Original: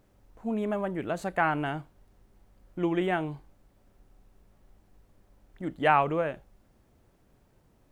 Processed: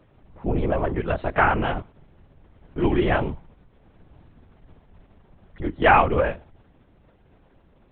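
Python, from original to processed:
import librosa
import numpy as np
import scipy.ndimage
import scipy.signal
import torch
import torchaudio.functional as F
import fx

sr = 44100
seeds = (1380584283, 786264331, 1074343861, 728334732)

y = fx.lpc_vocoder(x, sr, seeds[0], excitation='whisper', order=10)
y = y * librosa.db_to_amplitude(7.0)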